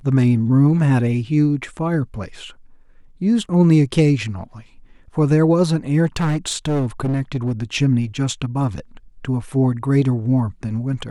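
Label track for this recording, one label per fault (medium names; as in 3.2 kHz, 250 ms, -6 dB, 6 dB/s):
6.160000	7.530000	clipped -16 dBFS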